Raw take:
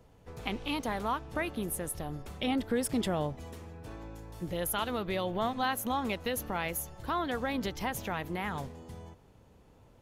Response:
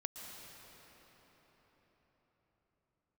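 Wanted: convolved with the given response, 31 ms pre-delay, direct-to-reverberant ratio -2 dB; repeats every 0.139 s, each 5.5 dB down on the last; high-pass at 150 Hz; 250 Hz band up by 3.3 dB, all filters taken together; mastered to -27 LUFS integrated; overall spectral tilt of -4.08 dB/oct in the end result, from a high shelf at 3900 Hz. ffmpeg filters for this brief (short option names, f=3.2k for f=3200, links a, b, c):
-filter_complex "[0:a]highpass=150,equalizer=f=250:t=o:g=4.5,highshelf=f=3.9k:g=4,aecho=1:1:139|278|417|556|695|834|973:0.531|0.281|0.149|0.079|0.0419|0.0222|0.0118,asplit=2[a][b];[1:a]atrim=start_sample=2205,adelay=31[c];[b][c]afir=irnorm=-1:irlink=0,volume=3dB[d];[a][d]amix=inputs=2:normalize=0"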